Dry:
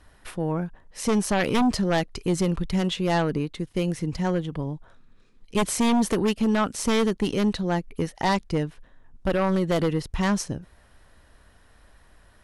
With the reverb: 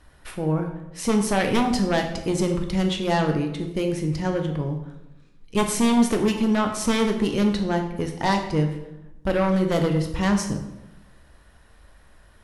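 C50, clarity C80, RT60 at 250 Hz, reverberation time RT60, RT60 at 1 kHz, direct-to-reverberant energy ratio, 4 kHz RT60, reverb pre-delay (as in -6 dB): 7.5 dB, 10.0 dB, 1.1 s, 0.95 s, 0.90 s, 3.5 dB, 0.65 s, 9 ms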